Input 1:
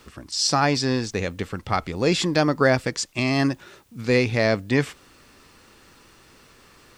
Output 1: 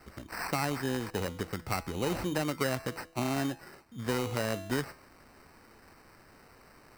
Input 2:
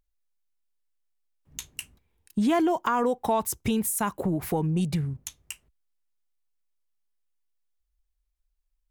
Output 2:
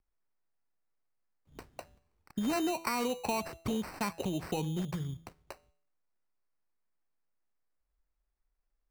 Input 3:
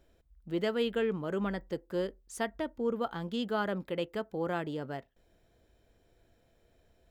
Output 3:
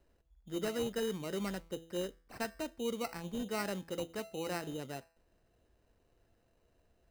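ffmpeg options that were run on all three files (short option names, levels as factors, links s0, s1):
-filter_complex "[0:a]bandreject=f=165.2:t=h:w=4,bandreject=f=330.4:t=h:w=4,bandreject=f=495.6:t=h:w=4,bandreject=f=660.8:t=h:w=4,bandreject=f=826:t=h:w=4,bandreject=f=991.2:t=h:w=4,bandreject=f=1156.4:t=h:w=4,bandreject=f=1321.6:t=h:w=4,bandreject=f=1486.8:t=h:w=4,bandreject=f=1652:t=h:w=4,bandreject=f=1817.2:t=h:w=4,bandreject=f=1982.4:t=h:w=4,bandreject=f=2147.6:t=h:w=4,bandreject=f=2312.8:t=h:w=4,bandreject=f=2478:t=h:w=4,bandreject=f=2643.2:t=h:w=4,bandreject=f=2808.4:t=h:w=4,bandreject=f=2973.6:t=h:w=4,bandreject=f=3138.8:t=h:w=4,bandreject=f=3304:t=h:w=4,bandreject=f=3469.2:t=h:w=4,acrossover=split=320|1200|3900[s0][s1][s2][s3];[s0]acompressor=threshold=0.0316:ratio=4[s4];[s1]acompressor=threshold=0.0355:ratio=4[s5];[s2]acompressor=threshold=0.0224:ratio=4[s6];[s3]acompressor=threshold=0.00708:ratio=4[s7];[s4][s5][s6][s7]amix=inputs=4:normalize=0,acrusher=samples=13:mix=1:aa=0.000001,volume=0.596"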